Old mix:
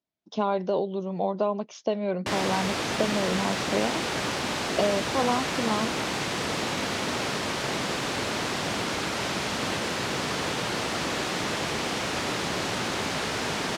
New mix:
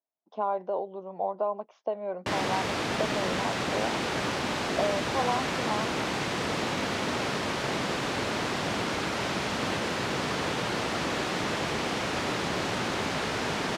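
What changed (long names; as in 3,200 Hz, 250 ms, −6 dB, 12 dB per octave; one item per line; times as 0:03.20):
speech: add resonant band-pass 820 Hz, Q 1.5
master: add high-shelf EQ 4,200 Hz −6.5 dB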